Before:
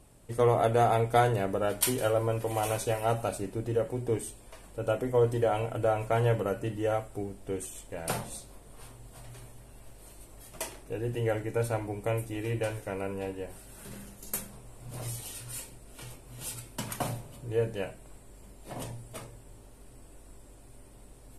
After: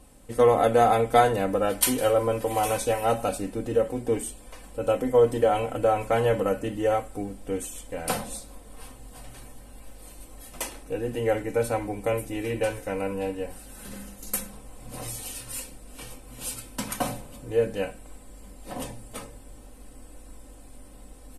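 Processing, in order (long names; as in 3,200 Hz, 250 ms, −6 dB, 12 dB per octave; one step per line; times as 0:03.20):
comb filter 3.9 ms, depth 60%
level +3.5 dB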